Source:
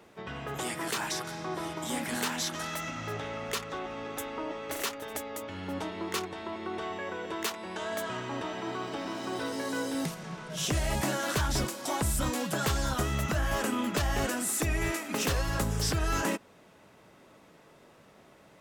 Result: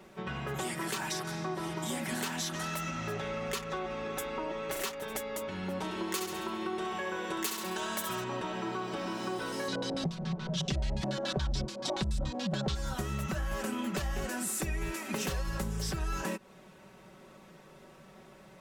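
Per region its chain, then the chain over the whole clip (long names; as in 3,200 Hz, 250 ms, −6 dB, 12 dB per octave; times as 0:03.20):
0:05.84–0:08.24: high-shelf EQ 4,800 Hz +10 dB + flutter between parallel walls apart 11.5 metres, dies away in 0.65 s
0:09.68–0:12.75: bass and treble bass +8 dB, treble +11 dB + auto-filter low-pass square 7 Hz 670–3,900 Hz
whole clip: low-shelf EQ 160 Hz +6 dB; comb filter 5.3 ms, depth 64%; downward compressor 4 to 1, threshold −32 dBFS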